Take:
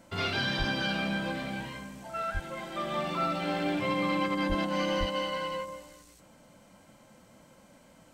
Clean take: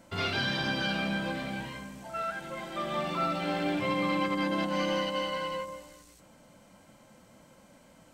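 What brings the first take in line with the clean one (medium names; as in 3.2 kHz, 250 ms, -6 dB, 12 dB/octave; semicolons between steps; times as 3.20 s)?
de-plosive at 0.58/2.33/4.48/4.99 s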